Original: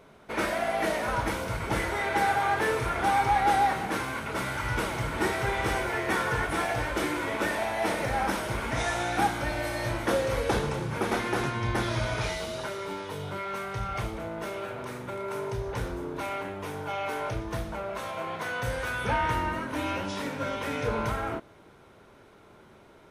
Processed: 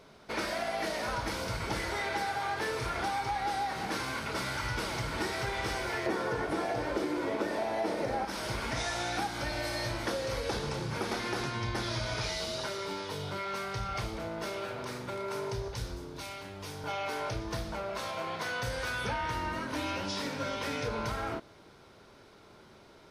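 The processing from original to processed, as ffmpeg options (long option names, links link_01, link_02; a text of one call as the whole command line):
ffmpeg -i in.wav -filter_complex "[0:a]asettb=1/sr,asplit=3[link_01][link_02][link_03];[link_01]atrim=end=6.064[link_04];[link_02]atrim=start=6.06:end=8.25,asetpts=PTS-STARTPTS,afade=type=in:duration=0.004:curve=qsin,afade=type=out:start_time=2.186:duration=0.004:curve=qsin,equalizer=frequency=380:width=0.43:gain=14[link_05];[link_03]atrim=start=8.246[link_06];[link_04][link_05]acrossfade=duration=0.004:curve1=hsin:curve2=qsin[link_07];[link_07][link_06]acrossfade=duration=0.004:curve1=qsin:curve2=hsin,asettb=1/sr,asplit=3[link_08][link_09][link_10];[link_08]atrim=end=15.684[link_11];[link_09]atrim=start=15.68:end=16.84,asetpts=PTS-STARTPTS,afade=type=in:duration=0.004:curve=qsin,afade=type=out:start_time=1.156:duration=0.004:curve=qsin,acrossover=split=150|3000[link_12][link_13][link_14];[link_13]acompressor=threshold=-40dB:ratio=6:attack=3.2:release=140:knee=2.83:detection=peak[link_15];[link_12][link_15][link_14]amix=inputs=3:normalize=0[link_16];[link_10]atrim=start=16.836[link_17];[link_11][link_16]acrossfade=duration=0.004:curve1=hsin:curve2=qsin[link_18];[link_18][link_17]acrossfade=duration=0.004:curve1=qsin:curve2=hsin,equalizer=frequency=4800:width_type=o:width=0.76:gain=11,acompressor=threshold=-28dB:ratio=6,volume=-2dB" out.wav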